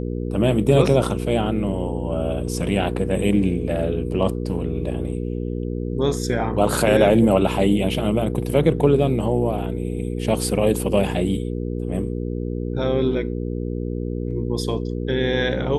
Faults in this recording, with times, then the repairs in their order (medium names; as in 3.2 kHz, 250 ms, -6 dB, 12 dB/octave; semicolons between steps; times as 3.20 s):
hum 60 Hz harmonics 8 -26 dBFS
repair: de-hum 60 Hz, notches 8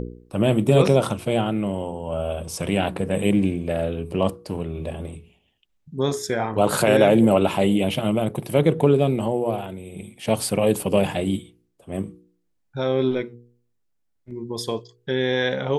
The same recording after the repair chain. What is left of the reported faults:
nothing left